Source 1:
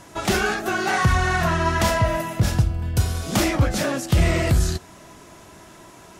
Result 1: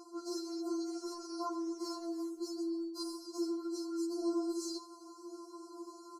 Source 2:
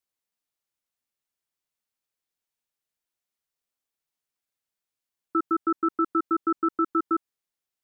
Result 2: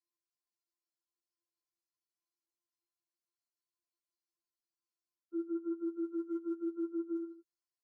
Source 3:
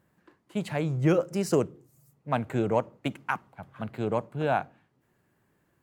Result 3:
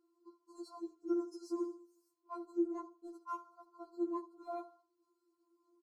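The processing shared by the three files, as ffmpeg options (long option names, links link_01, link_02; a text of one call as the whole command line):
ffmpeg -i in.wav -filter_complex "[0:a]afftfilt=real='re*(1-between(b*sr/4096,1400,4000))':imag='im*(1-between(b*sr/4096,1400,4000))':win_size=4096:overlap=0.75,asplit=3[link_01][link_02][link_03];[link_01]bandpass=frequency=300:width_type=q:width=8,volume=0dB[link_04];[link_02]bandpass=frequency=870:width_type=q:width=8,volume=-6dB[link_05];[link_03]bandpass=frequency=2240:width_type=q:width=8,volume=-9dB[link_06];[link_04][link_05][link_06]amix=inputs=3:normalize=0,lowshelf=frequency=75:gain=-2,aecho=1:1:78|156|234:0.119|0.0452|0.0172,aphaser=in_gain=1:out_gain=1:delay=3.1:decay=0.22:speed=0.35:type=sinusoidal,areverse,acompressor=threshold=-42dB:ratio=6,areverse,tiltshelf=frequency=1400:gain=-9.5,afftfilt=real='re*4*eq(mod(b,16),0)':imag='im*4*eq(mod(b,16),0)':win_size=2048:overlap=0.75,volume=14.5dB" out.wav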